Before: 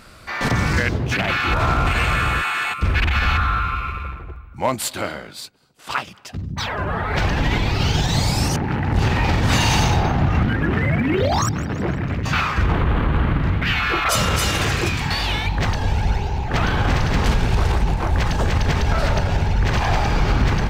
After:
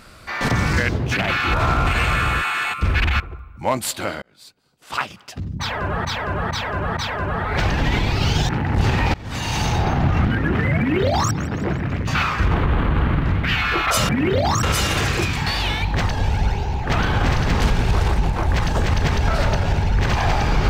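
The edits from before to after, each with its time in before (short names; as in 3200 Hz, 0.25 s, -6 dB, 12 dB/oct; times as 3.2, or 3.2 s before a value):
3.2–4.17 cut
5.19–5.94 fade in
6.56–7.02 loop, 4 plays
8.08–8.67 cut
9.32–10.14 fade in, from -23 dB
10.96–11.5 copy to 14.27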